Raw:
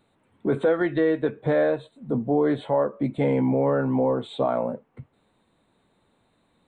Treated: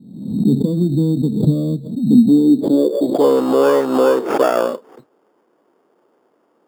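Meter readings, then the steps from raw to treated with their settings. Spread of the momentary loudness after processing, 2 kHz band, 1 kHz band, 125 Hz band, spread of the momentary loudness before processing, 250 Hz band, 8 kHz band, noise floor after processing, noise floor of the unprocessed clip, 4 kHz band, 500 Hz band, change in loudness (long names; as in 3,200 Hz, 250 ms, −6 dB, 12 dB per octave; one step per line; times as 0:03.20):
8 LU, +2.5 dB, +7.0 dB, +10.5 dB, 7 LU, +11.5 dB, can't be measured, −62 dBFS, −68 dBFS, +10.0 dB, +6.5 dB, +8.5 dB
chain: lower of the sound and its delayed copy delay 0.31 ms
elliptic low-pass filter 2,200 Hz
low-pass filter sweep 230 Hz → 1,400 Hz, 0:02.64–0:03.41
in parallel at −4.5 dB: decimation without filtering 11×
on the sum: high-pass filter sweep 170 Hz → 370 Hz, 0:01.78–0:03.02
background raised ahead of every attack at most 70 dB per second
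level +1 dB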